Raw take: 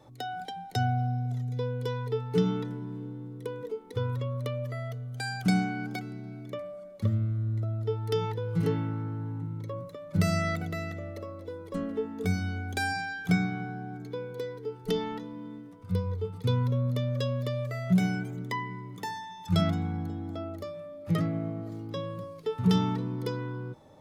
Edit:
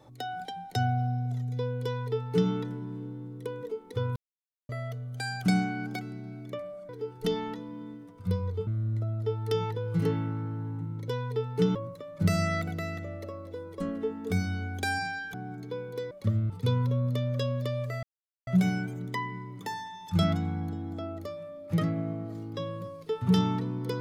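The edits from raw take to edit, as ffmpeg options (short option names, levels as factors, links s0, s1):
-filter_complex "[0:a]asplit=11[s0][s1][s2][s3][s4][s5][s6][s7][s8][s9][s10];[s0]atrim=end=4.16,asetpts=PTS-STARTPTS,afade=t=out:st=4.156:d=0.004:c=hsin[s11];[s1]atrim=start=4.16:end=4.69,asetpts=PTS-STARTPTS,volume=0[s12];[s2]atrim=start=4.69:end=6.892,asetpts=PTS-STARTPTS,afade=t=in:d=0.004:c=hsin[s13];[s3]atrim=start=14.528:end=16.312[s14];[s4]atrim=start=7.278:end=9.692[s15];[s5]atrim=start=1.838:end=2.512[s16];[s6]atrim=start=9.688:end=13.282[s17];[s7]atrim=start=13.758:end=14.532[s18];[s8]atrim=start=6.888:end=7.282[s19];[s9]atrim=start=16.308:end=17.84,asetpts=PTS-STARTPTS,afade=t=out:st=1.528:d=0.004:c=hsin,apad=pad_dur=0.44[s20];[s10]atrim=start=17.84,asetpts=PTS-STARTPTS,afade=t=in:d=0.004:c=hsin[s21];[s11][s12][s13]concat=n=3:v=0:a=1[s22];[s22][s14]acrossfade=d=0.004:c1=hsin:c2=hsin[s23];[s23][s15]acrossfade=d=0.004:c1=hsin:c2=hsin[s24];[s24][s16]acrossfade=d=0.004:c1=hsin:c2=hsin[s25];[s25][s17]acrossfade=d=0.004:c1=hsin:c2=hsin[s26];[s26][s18]acrossfade=d=0.004:c1=hsin:c2=hsin[s27];[s27][s19]acrossfade=d=0.004:c1=hsin:c2=hsin[s28];[s20][s21]concat=n=2:v=0:a=1[s29];[s28][s29]acrossfade=d=0.004:c1=hsin:c2=hsin"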